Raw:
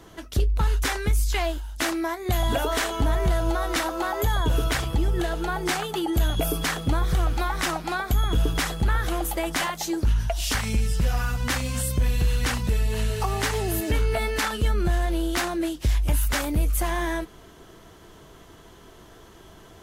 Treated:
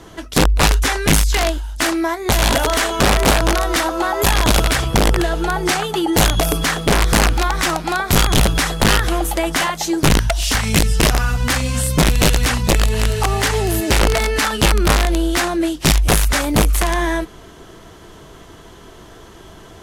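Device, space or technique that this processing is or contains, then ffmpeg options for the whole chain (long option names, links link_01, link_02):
overflowing digital effects unit: -af "aeval=exprs='(mod(6.31*val(0)+1,2)-1)/6.31':channel_layout=same,lowpass=12000,volume=8dB"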